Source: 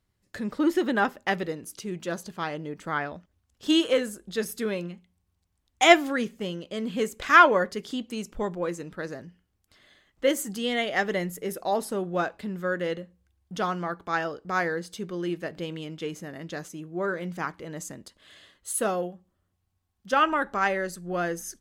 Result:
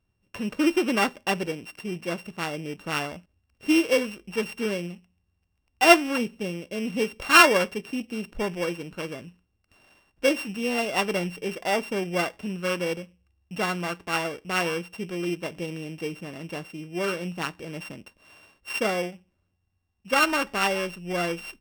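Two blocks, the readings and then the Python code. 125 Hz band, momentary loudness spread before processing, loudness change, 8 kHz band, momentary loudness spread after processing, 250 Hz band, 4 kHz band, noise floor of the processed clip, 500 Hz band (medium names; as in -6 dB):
+1.5 dB, 15 LU, +1.0 dB, +1.5 dB, 14 LU, +1.5 dB, +3.5 dB, -74 dBFS, +0.5 dB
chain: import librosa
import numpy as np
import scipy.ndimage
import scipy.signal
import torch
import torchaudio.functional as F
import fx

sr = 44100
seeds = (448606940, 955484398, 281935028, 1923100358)

y = np.r_[np.sort(x[:len(x) // 16 * 16].reshape(-1, 16), axis=1).ravel(), x[len(x) // 16 * 16:]]
y = fx.high_shelf(y, sr, hz=6900.0, db=-10.0)
y = F.gain(torch.from_numpy(y), 1.5).numpy()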